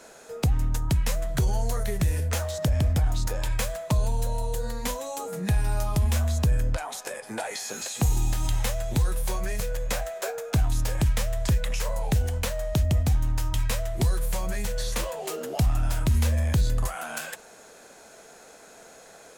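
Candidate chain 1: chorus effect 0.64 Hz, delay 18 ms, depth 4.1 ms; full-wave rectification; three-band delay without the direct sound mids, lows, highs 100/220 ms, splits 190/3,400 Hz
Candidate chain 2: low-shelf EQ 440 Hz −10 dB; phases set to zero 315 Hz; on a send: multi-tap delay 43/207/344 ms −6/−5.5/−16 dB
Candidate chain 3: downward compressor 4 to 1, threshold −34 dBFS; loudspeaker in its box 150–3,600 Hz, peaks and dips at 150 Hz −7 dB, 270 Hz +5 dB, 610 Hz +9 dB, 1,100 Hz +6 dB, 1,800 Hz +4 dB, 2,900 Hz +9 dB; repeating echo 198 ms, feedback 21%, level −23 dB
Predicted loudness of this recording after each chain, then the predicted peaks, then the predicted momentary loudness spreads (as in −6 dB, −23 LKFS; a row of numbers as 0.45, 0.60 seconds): −35.0, −35.5, −38.0 LKFS; −14.5, −9.0, −15.5 dBFS; 6, 7, 11 LU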